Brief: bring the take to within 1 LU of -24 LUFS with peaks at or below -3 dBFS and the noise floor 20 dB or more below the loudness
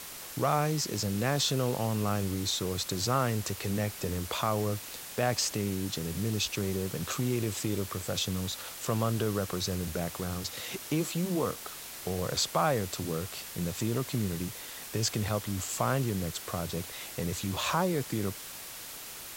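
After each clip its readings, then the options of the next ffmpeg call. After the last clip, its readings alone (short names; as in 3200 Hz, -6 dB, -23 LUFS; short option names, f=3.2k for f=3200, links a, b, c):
noise floor -44 dBFS; noise floor target -52 dBFS; loudness -31.5 LUFS; peak -14.5 dBFS; loudness target -24.0 LUFS
-> -af "afftdn=nr=8:nf=-44"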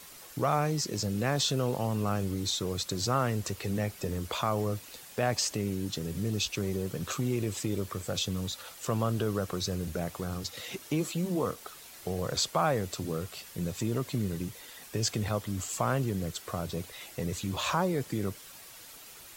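noise floor -50 dBFS; noise floor target -52 dBFS
-> -af "afftdn=nr=6:nf=-50"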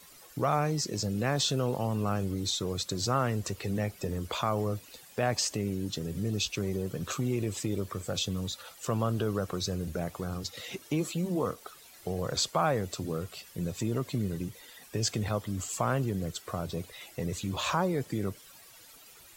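noise floor -54 dBFS; loudness -32.0 LUFS; peak -14.5 dBFS; loudness target -24.0 LUFS
-> -af "volume=8dB"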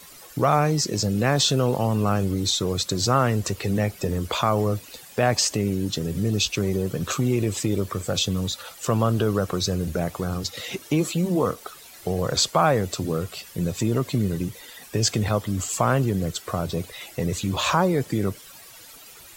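loudness -24.0 LUFS; peak -6.5 dBFS; noise floor -46 dBFS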